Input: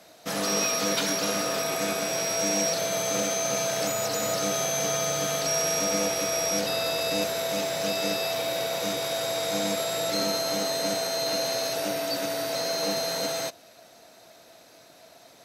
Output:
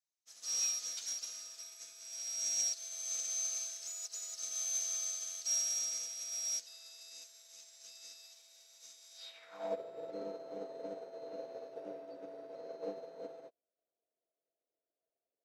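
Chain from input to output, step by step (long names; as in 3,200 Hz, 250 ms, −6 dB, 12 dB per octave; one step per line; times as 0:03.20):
band-pass filter sweep 6,500 Hz → 440 Hz, 0:09.13–0:09.79
expander for the loud parts 2.5 to 1, over −52 dBFS
level −1.5 dB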